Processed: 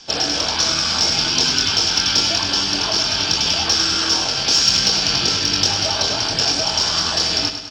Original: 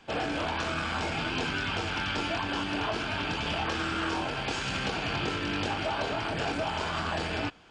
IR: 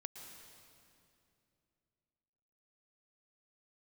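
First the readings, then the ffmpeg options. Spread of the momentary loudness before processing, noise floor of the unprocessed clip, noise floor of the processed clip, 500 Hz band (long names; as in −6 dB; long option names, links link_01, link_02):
1 LU, −34 dBFS, −23 dBFS, +5.0 dB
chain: -af "lowpass=frequency=5500:width_type=q:width=10,aexciter=amount=2.9:drive=6.3:freq=3400,aecho=1:1:102|204|306|408|510|612:0.355|0.192|0.103|0.0559|0.0302|0.0163,volume=4.5dB"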